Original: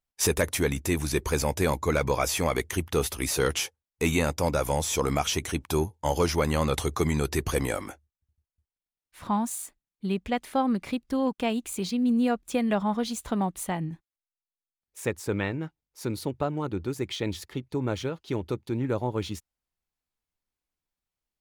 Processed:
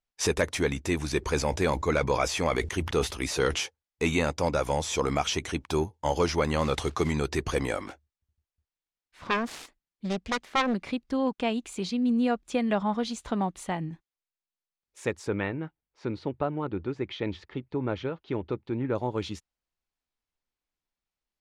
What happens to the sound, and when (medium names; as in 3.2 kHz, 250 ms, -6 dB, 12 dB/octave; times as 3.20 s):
1.19–3.60 s: decay stretcher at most 90 dB/s
6.59–7.14 s: block-companded coder 5-bit
7.87–10.74 s: self-modulated delay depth 0.87 ms
15.29–18.95 s: low-pass 2.8 kHz
whole clip: low-pass 6.2 kHz 12 dB/octave; peaking EQ 95 Hz -3.5 dB 2.1 oct